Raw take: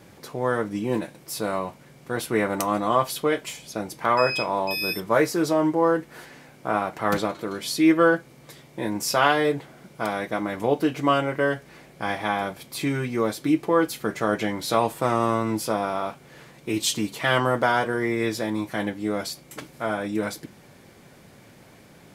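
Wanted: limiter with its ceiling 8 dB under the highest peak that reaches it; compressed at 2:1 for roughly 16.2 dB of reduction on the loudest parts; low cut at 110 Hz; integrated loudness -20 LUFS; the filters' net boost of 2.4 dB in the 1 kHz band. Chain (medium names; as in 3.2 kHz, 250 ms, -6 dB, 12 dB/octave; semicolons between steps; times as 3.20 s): high-pass 110 Hz; peaking EQ 1 kHz +3 dB; compression 2:1, threshold -44 dBFS; trim +19 dB; peak limiter -7.5 dBFS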